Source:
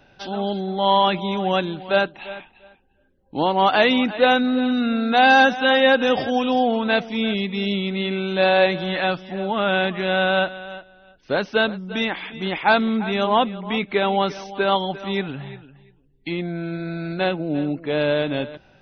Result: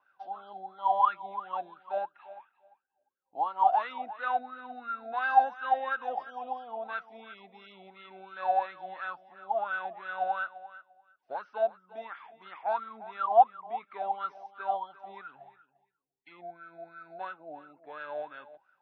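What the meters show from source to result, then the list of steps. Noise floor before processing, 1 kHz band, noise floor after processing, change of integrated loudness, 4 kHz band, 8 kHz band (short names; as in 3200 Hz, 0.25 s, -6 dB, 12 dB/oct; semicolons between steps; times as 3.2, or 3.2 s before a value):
-57 dBFS, -6.5 dB, -79 dBFS, -11.0 dB, -29.0 dB, n/a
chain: high shelf 4500 Hz +8.5 dB; wah 2.9 Hz 680–1400 Hz, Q 20; gain +3.5 dB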